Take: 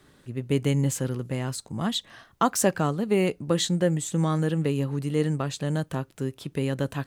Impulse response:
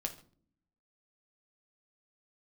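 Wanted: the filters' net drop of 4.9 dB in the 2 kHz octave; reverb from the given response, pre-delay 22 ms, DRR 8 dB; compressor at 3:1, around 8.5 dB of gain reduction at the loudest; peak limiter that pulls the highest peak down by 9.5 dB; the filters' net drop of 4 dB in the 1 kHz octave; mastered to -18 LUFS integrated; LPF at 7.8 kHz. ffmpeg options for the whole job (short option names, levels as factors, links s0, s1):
-filter_complex "[0:a]lowpass=7800,equalizer=f=1000:t=o:g=-4,equalizer=f=2000:t=o:g=-5,acompressor=threshold=0.0316:ratio=3,alimiter=level_in=1.33:limit=0.0631:level=0:latency=1,volume=0.75,asplit=2[s0][s1];[1:a]atrim=start_sample=2205,adelay=22[s2];[s1][s2]afir=irnorm=-1:irlink=0,volume=0.398[s3];[s0][s3]amix=inputs=2:normalize=0,volume=7.08"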